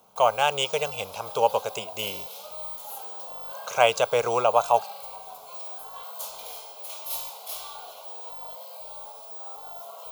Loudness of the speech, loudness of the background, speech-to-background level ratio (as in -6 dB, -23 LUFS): -24.5 LUFS, -36.5 LUFS, 12.0 dB